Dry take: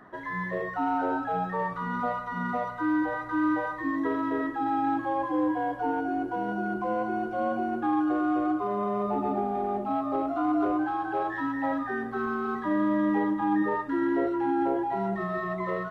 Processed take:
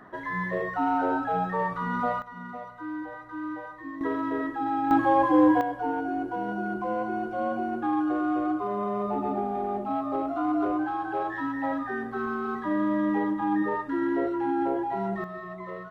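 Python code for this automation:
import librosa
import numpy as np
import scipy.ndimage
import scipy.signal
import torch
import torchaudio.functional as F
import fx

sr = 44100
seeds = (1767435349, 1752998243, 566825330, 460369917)

y = fx.gain(x, sr, db=fx.steps((0.0, 2.0), (2.22, -9.0), (4.01, -0.5), (4.91, 7.5), (5.61, -0.5), (15.24, -7.5)))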